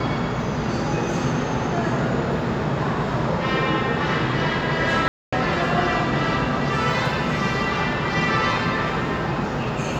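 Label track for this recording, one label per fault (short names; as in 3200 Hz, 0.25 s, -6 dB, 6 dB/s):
5.080000	5.330000	gap 0.245 s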